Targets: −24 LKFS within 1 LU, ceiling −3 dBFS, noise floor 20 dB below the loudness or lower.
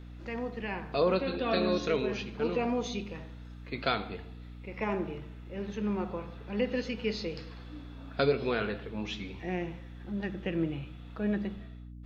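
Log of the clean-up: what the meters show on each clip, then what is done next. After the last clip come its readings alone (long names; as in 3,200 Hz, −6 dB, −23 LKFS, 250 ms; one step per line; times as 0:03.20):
mains hum 60 Hz; hum harmonics up to 300 Hz; level of the hum −43 dBFS; integrated loudness −33.0 LKFS; sample peak −13.5 dBFS; target loudness −24.0 LKFS
→ mains-hum notches 60/120/180/240/300 Hz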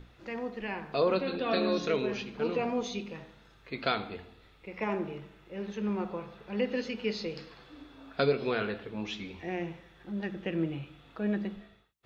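mains hum none found; integrated loudness −33.5 LKFS; sample peak −14.0 dBFS; target loudness −24.0 LKFS
→ level +9.5 dB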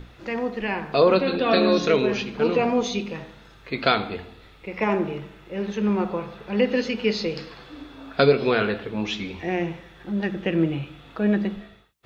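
integrated loudness −24.0 LKFS; sample peak −4.5 dBFS; background noise floor −49 dBFS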